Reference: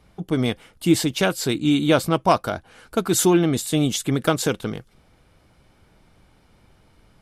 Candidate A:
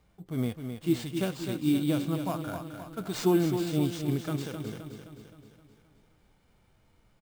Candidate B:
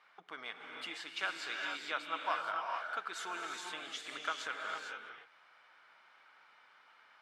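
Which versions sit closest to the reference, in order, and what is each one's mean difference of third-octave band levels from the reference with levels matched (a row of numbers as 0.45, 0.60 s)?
A, B; 7.5, 12.5 dB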